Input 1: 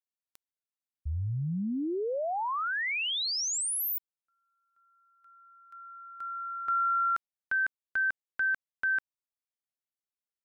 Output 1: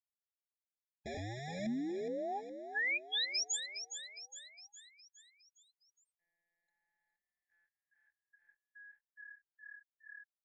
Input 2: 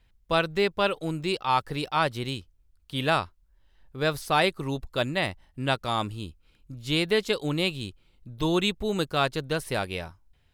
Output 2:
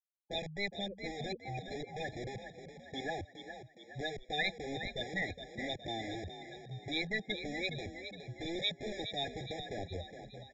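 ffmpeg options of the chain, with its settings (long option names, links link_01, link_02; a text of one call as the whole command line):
ffmpeg -i in.wav -filter_complex "[0:a]afftfilt=real='re*gte(hypot(re,im),0.112)':imag='im*gte(hypot(re,im),0.112)':win_size=1024:overlap=0.75,lowshelf=frequency=60:gain=9.5,acrossover=split=200|1200[link_01][link_02][link_03];[link_01]aeval=exprs='(mod(59.6*val(0)+1,2)-1)/59.6':channel_layout=same[link_04];[link_02]acompressor=threshold=-36dB:ratio=12:attack=0.31:release=748:knee=1:detection=peak[link_05];[link_04][link_05][link_03]amix=inputs=3:normalize=0,aresample=16000,aresample=44100,asplit=7[link_06][link_07][link_08][link_09][link_10][link_11][link_12];[link_07]adelay=415,afreqshift=37,volume=-9dB[link_13];[link_08]adelay=830,afreqshift=74,volume=-14.8dB[link_14];[link_09]adelay=1245,afreqshift=111,volume=-20.7dB[link_15];[link_10]adelay=1660,afreqshift=148,volume=-26.5dB[link_16];[link_11]adelay=2075,afreqshift=185,volume=-32.4dB[link_17];[link_12]adelay=2490,afreqshift=222,volume=-38.2dB[link_18];[link_06][link_13][link_14][link_15][link_16][link_17][link_18]amix=inputs=7:normalize=0,afftfilt=real='re*eq(mod(floor(b*sr/1024/820),2),0)':imag='im*eq(mod(floor(b*sr/1024/820),2),0)':win_size=1024:overlap=0.75,volume=-2dB" out.wav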